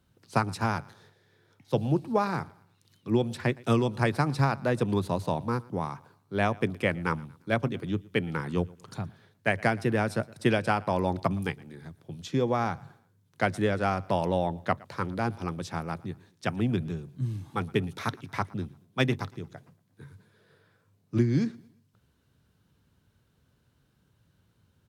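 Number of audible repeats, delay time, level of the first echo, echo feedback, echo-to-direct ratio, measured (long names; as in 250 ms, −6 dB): 2, 116 ms, −23.5 dB, 40%, −23.0 dB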